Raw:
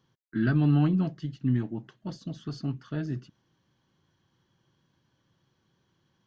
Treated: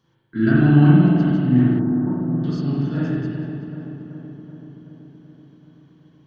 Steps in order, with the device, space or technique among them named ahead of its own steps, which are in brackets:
dub delay into a spring reverb (feedback echo with a low-pass in the loop 380 ms, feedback 68%, low-pass 2,400 Hz, level −8.5 dB; spring reverb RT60 1.6 s, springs 36/48 ms, chirp 50 ms, DRR −6.5 dB)
0:01.79–0:02.44: low-pass filter 1,500 Hz 24 dB per octave
level +2 dB

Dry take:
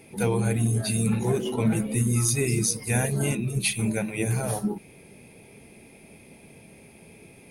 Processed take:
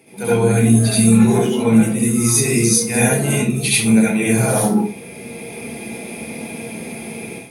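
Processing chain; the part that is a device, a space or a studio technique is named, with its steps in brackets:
far laptop microphone (convolution reverb RT60 0.35 s, pre-delay 63 ms, DRR −6.5 dB; high-pass filter 150 Hz 12 dB per octave; automatic gain control gain up to 13.5 dB)
level −1 dB

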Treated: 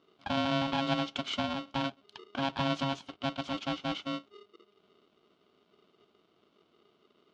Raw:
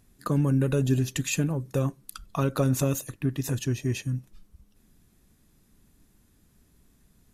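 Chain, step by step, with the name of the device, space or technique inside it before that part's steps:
ring modulator pedal into a guitar cabinet (ring modulator with a square carrier 410 Hz; loudspeaker in its box 94–4,300 Hz, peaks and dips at 120 Hz −7 dB, 520 Hz −9 dB, 1,900 Hz −9 dB, 3,200 Hz +6 dB)
level −4.5 dB

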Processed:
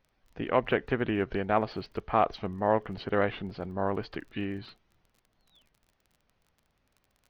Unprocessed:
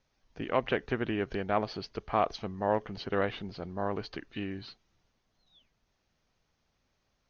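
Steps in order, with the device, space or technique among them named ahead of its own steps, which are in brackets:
lo-fi chain (low-pass filter 3,200 Hz 12 dB per octave; tape wow and flutter; surface crackle 27 per second −51 dBFS)
level +3 dB

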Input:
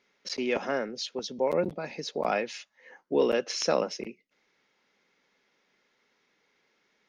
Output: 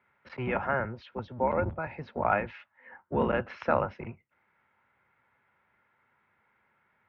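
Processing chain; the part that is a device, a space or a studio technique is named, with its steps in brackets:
sub-octave bass pedal (sub-octave generator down 1 octave, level +4 dB; loudspeaker in its box 72–2,300 Hz, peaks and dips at 130 Hz −5 dB, 180 Hz −6 dB, 290 Hz −8 dB, 440 Hz −8 dB, 920 Hz +7 dB, 1,400 Hz +7 dB)

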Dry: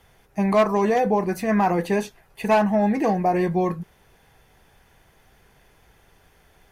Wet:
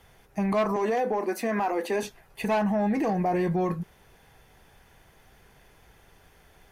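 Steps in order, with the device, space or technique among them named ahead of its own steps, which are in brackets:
0:00.76–0:02.03: elliptic high-pass filter 230 Hz, stop band 40 dB
soft clipper into limiter (soft clipping −12 dBFS, distortion −22 dB; brickwall limiter −19.5 dBFS, peak gain reduction 6 dB)

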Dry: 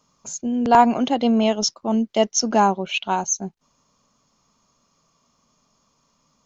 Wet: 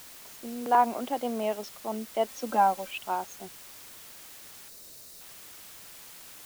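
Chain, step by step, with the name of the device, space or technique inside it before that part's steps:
wax cylinder (band-pass filter 370–2,100 Hz; tape wow and flutter; white noise bed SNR 15 dB)
0:02.28–0:02.91: comb filter 3.8 ms, depth 67%
0:04.69–0:05.21: gain on a spectral selection 700–3,600 Hz −8 dB
level −7.5 dB

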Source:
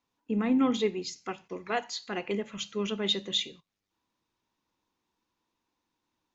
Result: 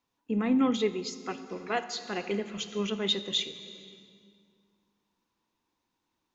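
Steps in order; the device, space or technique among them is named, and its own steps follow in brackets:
compressed reverb return (on a send at −7.5 dB: convolution reverb RT60 2.0 s, pre-delay 66 ms + downward compressor, threshold −33 dBFS, peak gain reduction 11.5 dB)

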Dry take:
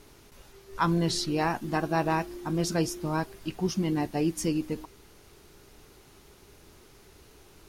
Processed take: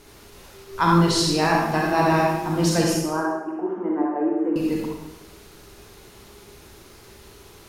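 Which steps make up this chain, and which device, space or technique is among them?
0:02.95–0:04.56: elliptic band-pass filter 290–1,500 Hz, stop band 50 dB
bathroom (convolution reverb RT60 0.95 s, pre-delay 35 ms, DRR −2.5 dB)
low-shelf EQ 180 Hz −4.5 dB
level +4.5 dB

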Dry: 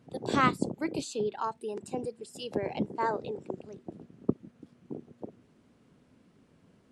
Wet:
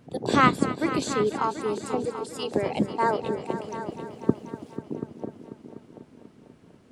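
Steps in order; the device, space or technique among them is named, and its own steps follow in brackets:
0:03.45–0:04.77: high-shelf EQ 3,300 Hz +11.5 dB
multi-head tape echo (echo machine with several playback heads 245 ms, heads all three, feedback 49%, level −15 dB; tape wow and flutter 22 cents)
level +6 dB

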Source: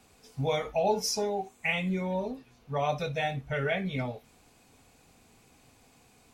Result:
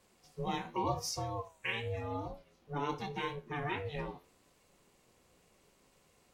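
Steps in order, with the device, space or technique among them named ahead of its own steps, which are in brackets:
alien voice (ring modulation 290 Hz; flanger 0.89 Hz, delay 9.7 ms, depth 3.5 ms, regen +84%)

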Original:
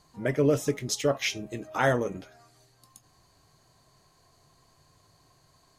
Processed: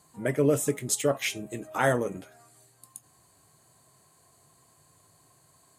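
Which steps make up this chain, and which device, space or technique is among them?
budget condenser microphone (high-pass filter 92 Hz; high shelf with overshoot 6,800 Hz +6.5 dB, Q 3)

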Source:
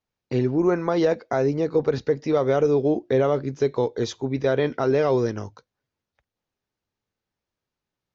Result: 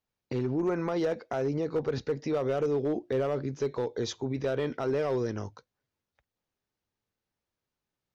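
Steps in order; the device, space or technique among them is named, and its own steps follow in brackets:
clipper into limiter (hard clipping −14.5 dBFS, distortion −20 dB; brickwall limiter −20 dBFS, peak gain reduction 5.5 dB)
level −2.5 dB

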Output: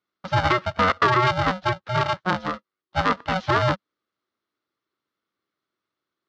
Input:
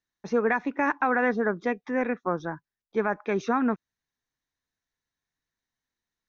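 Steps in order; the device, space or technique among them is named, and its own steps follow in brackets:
ring modulator pedal into a guitar cabinet (ring modulator with a square carrier 370 Hz; loudspeaker in its box 92–4,600 Hz, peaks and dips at 200 Hz +3 dB, 310 Hz +5 dB, 730 Hz −4 dB, 1,200 Hz +7 dB, 2,400 Hz −5 dB)
level +4 dB

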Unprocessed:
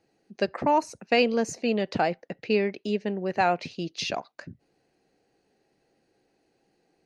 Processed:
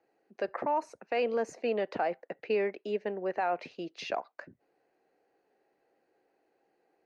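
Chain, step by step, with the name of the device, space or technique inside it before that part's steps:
DJ mixer with the lows and highs turned down (three-way crossover with the lows and the highs turned down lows −18 dB, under 340 Hz, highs −15 dB, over 2,200 Hz; brickwall limiter −21 dBFS, peak gain reduction 8.5 dB)

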